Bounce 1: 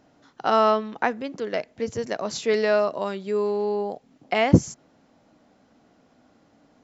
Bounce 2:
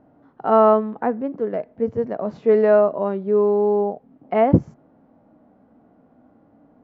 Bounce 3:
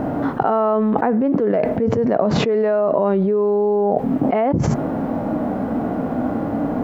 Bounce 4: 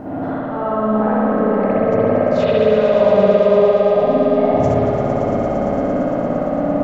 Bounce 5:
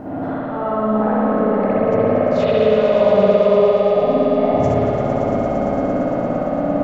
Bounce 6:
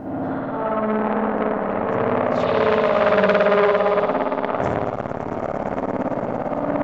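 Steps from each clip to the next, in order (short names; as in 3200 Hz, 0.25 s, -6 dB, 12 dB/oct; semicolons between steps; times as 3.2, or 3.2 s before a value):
LPF 1000 Hz 12 dB/oct; harmonic-percussive split harmonic +7 dB
fast leveller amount 100%; gain -7.5 dB
auto swell 0.224 s; swelling echo 0.114 s, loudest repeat 5, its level -9.5 dB; spring tank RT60 3.4 s, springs 56 ms, chirp 25 ms, DRR -10 dB; gain -9.5 dB
delay with a stepping band-pass 0.174 s, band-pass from 3000 Hz, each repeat -0.7 oct, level -5 dB; gain -1 dB
core saturation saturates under 1400 Hz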